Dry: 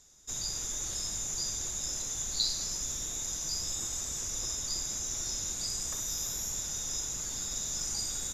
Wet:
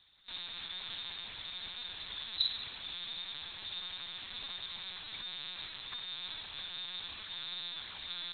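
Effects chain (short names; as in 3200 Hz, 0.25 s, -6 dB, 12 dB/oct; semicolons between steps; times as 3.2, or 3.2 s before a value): differentiator; LPC vocoder at 8 kHz pitch kept; gain +15 dB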